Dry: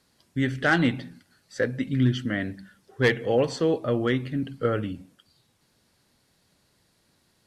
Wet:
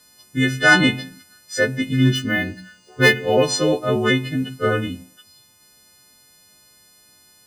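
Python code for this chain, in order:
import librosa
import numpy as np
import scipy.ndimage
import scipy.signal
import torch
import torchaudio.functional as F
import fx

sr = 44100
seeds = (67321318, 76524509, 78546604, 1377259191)

y = fx.freq_snap(x, sr, grid_st=3)
y = fx.resample_linear(y, sr, factor=3, at=(2.15, 3.43))
y = F.gain(torch.from_numpy(y), 5.5).numpy()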